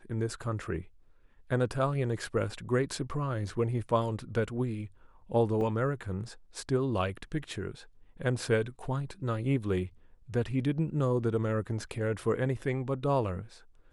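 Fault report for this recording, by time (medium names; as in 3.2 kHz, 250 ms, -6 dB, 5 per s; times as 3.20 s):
5.61 s: dropout 2.6 ms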